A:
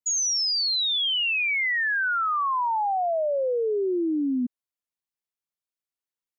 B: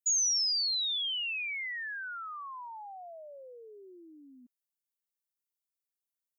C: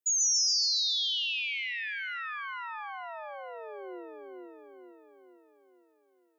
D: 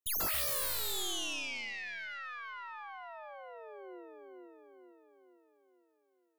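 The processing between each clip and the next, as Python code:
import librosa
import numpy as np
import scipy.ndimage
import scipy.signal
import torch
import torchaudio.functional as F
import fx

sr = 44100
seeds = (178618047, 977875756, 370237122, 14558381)

y1 = np.diff(x, prepend=0.0)
y1 = F.gain(torch.from_numpy(y1), -1.5).numpy()
y2 = fx.filter_sweep_highpass(y1, sr, from_hz=310.0, to_hz=1500.0, start_s=3.83, end_s=5.13, q=2.9)
y2 = fx.echo_split(y2, sr, split_hz=2500.0, low_ms=454, high_ms=138, feedback_pct=52, wet_db=-3.0)
y3 = fx.tracing_dist(y2, sr, depth_ms=0.23)
y3 = F.gain(torch.from_numpy(y3), -6.5).numpy()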